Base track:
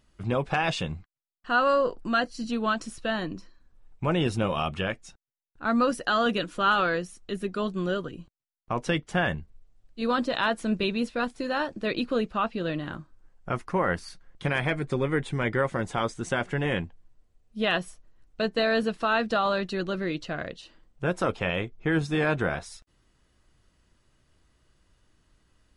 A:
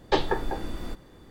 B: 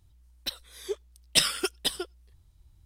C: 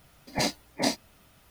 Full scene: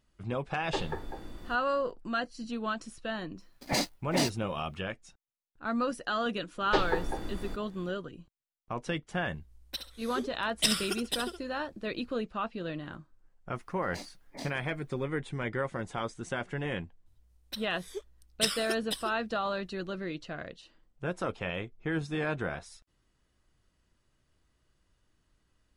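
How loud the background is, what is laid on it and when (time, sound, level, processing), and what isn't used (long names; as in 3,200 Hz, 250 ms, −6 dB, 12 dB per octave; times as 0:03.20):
base track −7 dB
0:00.61: mix in A −10.5 dB
0:03.34: mix in C −10.5 dB, fades 0.10 s + leveller curve on the samples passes 3
0:06.61: mix in A −4 dB
0:09.27: mix in B −5 dB + repeating echo 67 ms, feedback 21%, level −8 dB
0:13.55: mix in C −17 dB
0:17.06: mix in B −7 dB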